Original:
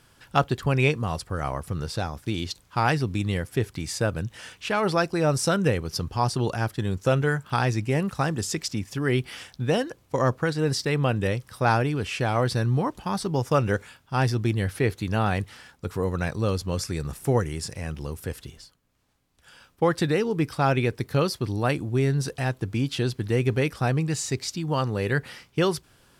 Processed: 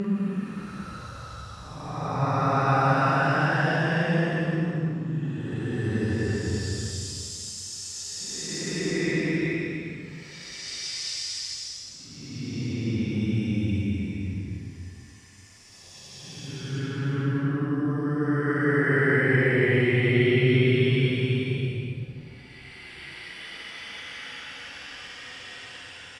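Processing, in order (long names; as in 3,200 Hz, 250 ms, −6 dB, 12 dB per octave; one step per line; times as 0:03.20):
dynamic equaliser 1,900 Hz, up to +5 dB, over −41 dBFS, Q 1.9
extreme stretch with random phases 19×, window 0.10 s, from 0:08.07
high-frequency loss of the air 77 metres
double-tracking delay 44 ms −11 dB
echo with shifted repeats 177 ms, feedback 55%, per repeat +38 Hz, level −18 dB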